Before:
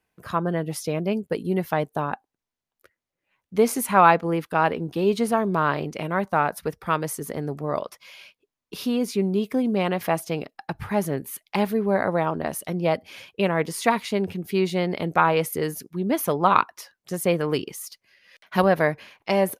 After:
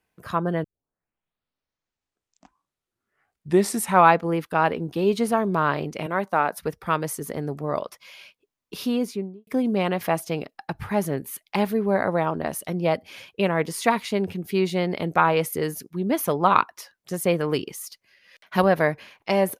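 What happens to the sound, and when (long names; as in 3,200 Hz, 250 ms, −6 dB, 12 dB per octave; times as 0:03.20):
0:00.64: tape start 3.49 s
0:06.06–0:06.58: high-pass filter 210 Hz
0:08.93–0:09.47: fade out and dull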